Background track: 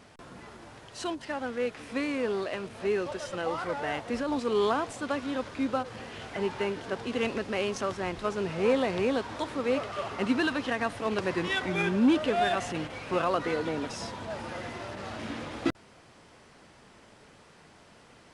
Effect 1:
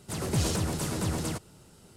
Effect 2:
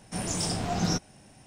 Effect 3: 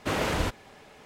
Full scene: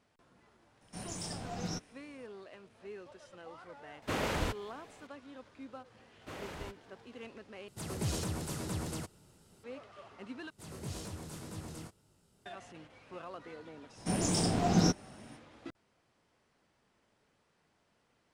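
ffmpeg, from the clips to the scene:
ffmpeg -i bed.wav -i cue0.wav -i cue1.wav -i cue2.wav -filter_complex "[2:a]asplit=2[link_01][link_02];[3:a]asplit=2[link_03][link_04];[1:a]asplit=2[link_05][link_06];[0:a]volume=-18.5dB[link_07];[link_06]flanger=delay=19:depth=6.8:speed=1.9[link_08];[link_02]equalizer=frequency=310:width_type=o:width=2.1:gain=6.5[link_09];[link_07]asplit=3[link_10][link_11][link_12];[link_10]atrim=end=7.684[link_13];[link_05]atrim=end=1.96,asetpts=PTS-STARTPTS,volume=-7.5dB[link_14];[link_11]atrim=start=9.636:end=10.504[link_15];[link_08]atrim=end=1.96,asetpts=PTS-STARTPTS,volume=-11.5dB[link_16];[link_12]atrim=start=12.456[link_17];[link_01]atrim=end=1.46,asetpts=PTS-STARTPTS,volume=-11.5dB,afade=type=in:duration=0.004:curve=hsin,afade=type=out:start_time=1.456:duration=0.004:curve=hsin,adelay=810[link_18];[link_03]atrim=end=1.05,asetpts=PTS-STARTPTS,volume=-6dB,afade=type=in:duration=0.004:curve=hsin,afade=type=out:start_time=1.046:duration=0.004:curve=hsin,adelay=4020[link_19];[link_04]atrim=end=1.05,asetpts=PTS-STARTPTS,volume=-17.5dB,afade=type=in:duration=0.004:curve=hsin,afade=type=out:start_time=1.046:duration=0.004:curve=hsin,adelay=6210[link_20];[link_09]atrim=end=1.46,asetpts=PTS-STARTPTS,volume=-3dB,afade=type=in:duration=0.05,afade=type=out:start_time=1.41:duration=0.05,adelay=13940[link_21];[link_13][link_14]acrossfade=duration=0.004:curve1=hsin:curve2=hsin[link_22];[link_22][link_15]acrossfade=duration=0.004:curve1=hsin:curve2=hsin[link_23];[link_23][link_16]acrossfade=duration=0.004:curve1=hsin:curve2=hsin[link_24];[link_24][link_17]acrossfade=duration=0.004:curve1=hsin:curve2=hsin[link_25];[link_25][link_18][link_19][link_20][link_21]amix=inputs=5:normalize=0" out.wav

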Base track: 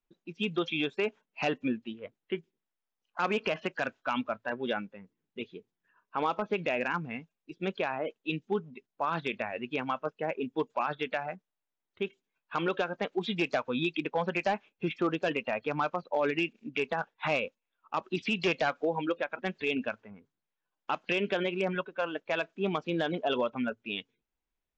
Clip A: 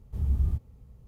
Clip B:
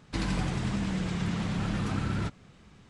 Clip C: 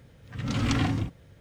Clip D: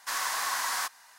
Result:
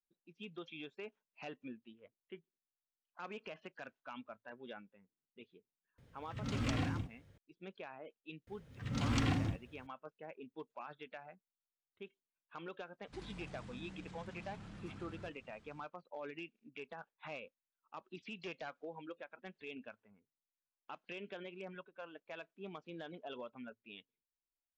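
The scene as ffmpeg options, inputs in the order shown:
ffmpeg -i bed.wav -i cue0.wav -i cue1.wav -i cue2.wav -filter_complex "[3:a]asplit=2[link_01][link_02];[0:a]volume=-17.5dB[link_03];[2:a]acompressor=threshold=-50dB:ratio=2:attack=7.8:release=21:knee=1:detection=peak[link_04];[link_01]atrim=end=1.4,asetpts=PTS-STARTPTS,volume=-10.5dB,afade=type=in:duration=0.004:curve=hsin,afade=type=out:start_time=1.396:duration=0.004:curve=hsin,adelay=5980[link_05];[link_02]atrim=end=1.4,asetpts=PTS-STARTPTS,volume=-7.5dB,afade=type=in:duration=0.004:curve=hsin,afade=type=out:start_time=1.396:duration=0.004:curve=hsin,adelay=8470[link_06];[link_04]atrim=end=2.89,asetpts=PTS-STARTPTS,volume=-10.5dB,afade=type=in:duration=0.1,afade=type=out:start_time=2.79:duration=0.1,adelay=573300S[link_07];[link_03][link_05][link_06][link_07]amix=inputs=4:normalize=0" out.wav

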